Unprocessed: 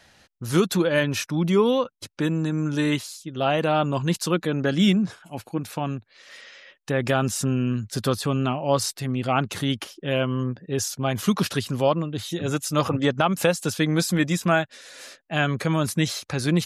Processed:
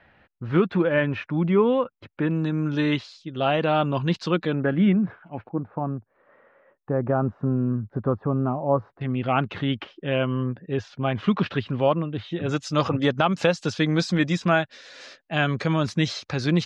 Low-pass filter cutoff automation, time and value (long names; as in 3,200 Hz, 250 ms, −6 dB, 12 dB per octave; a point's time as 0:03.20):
low-pass filter 24 dB per octave
2,500 Hz
from 0:02.31 4,300 Hz
from 0:04.55 2,100 Hz
from 0:05.49 1,200 Hz
from 0:09.01 3,100 Hz
from 0:12.49 5,500 Hz